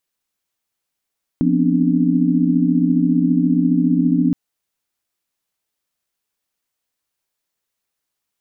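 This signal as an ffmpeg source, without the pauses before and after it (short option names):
-f lavfi -i "aevalsrc='0.119*(sin(2*PI*174.61*t)+sin(2*PI*246.94*t)+sin(2*PI*261.63*t)+sin(2*PI*293.66*t))':d=2.92:s=44100"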